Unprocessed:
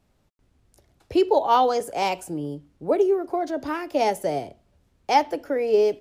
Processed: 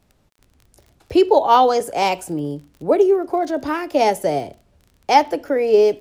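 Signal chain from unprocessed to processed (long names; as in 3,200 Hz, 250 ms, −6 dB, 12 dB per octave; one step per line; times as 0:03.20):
surface crackle 24 per second −40 dBFS
level +5.5 dB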